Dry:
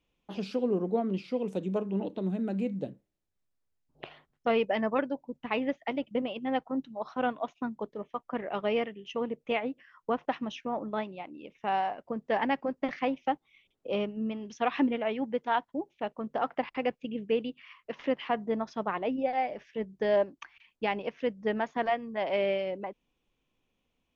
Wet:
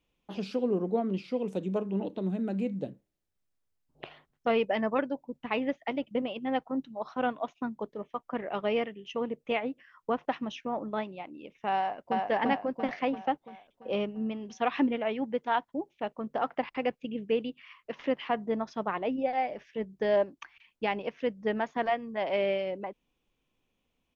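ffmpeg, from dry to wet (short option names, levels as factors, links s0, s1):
-filter_complex "[0:a]asplit=2[s0][s1];[s1]afade=t=in:st=11.77:d=0.01,afade=t=out:st=12.23:d=0.01,aecho=0:1:340|680|1020|1360|1700|2040|2380|2720:1|0.55|0.3025|0.166375|0.0915063|0.0503284|0.0276806|0.0152244[s2];[s0][s2]amix=inputs=2:normalize=0"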